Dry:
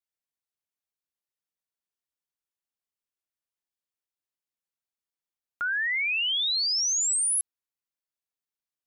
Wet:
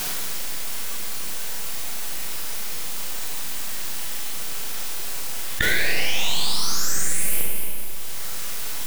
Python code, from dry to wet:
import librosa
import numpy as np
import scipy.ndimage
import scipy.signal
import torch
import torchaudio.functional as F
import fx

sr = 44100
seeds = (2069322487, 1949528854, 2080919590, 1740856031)

p1 = fx.quant_dither(x, sr, seeds[0], bits=8, dither='triangular')
p2 = x + F.gain(torch.from_numpy(p1), -4.0).numpy()
p3 = fx.formant_shift(p2, sr, semitones=4)
p4 = np.maximum(p3, 0.0)
p5 = p4 + fx.echo_single(p4, sr, ms=227, db=-12.5, dry=0)
p6 = fx.rev_schroeder(p5, sr, rt60_s=0.92, comb_ms=33, drr_db=-2.0)
p7 = fx.env_flatten(p6, sr, amount_pct=70)
y = F.gain(torch.from_numpy(p7), -4.0).numpy()